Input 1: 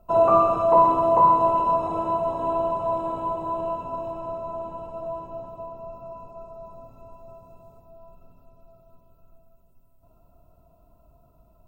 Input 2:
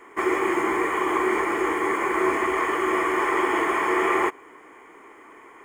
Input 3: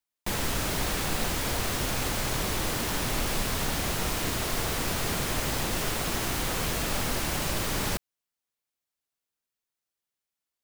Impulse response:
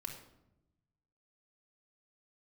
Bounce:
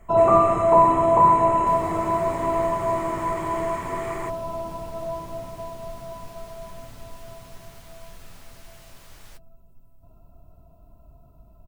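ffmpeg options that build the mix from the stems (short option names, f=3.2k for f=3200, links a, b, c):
-filter_complex "[0:a]lowshelf=f=250:g=7.5,bandreject=f=520:w=12,volume=0.5dB[a];[1:a]equalizer=f=7.9k:w=2:g=13,volume=-14dB[b];[2:a]flanger=delay=6.6:depth=5.1:regen=-33:speed=0.35:shape=sinusoidal,equalizer=f=180:w=0.62:g=-11.5,adelay=1400,volume=-16dB[c];[a][b][c]amix=inputs=3:normalize=0"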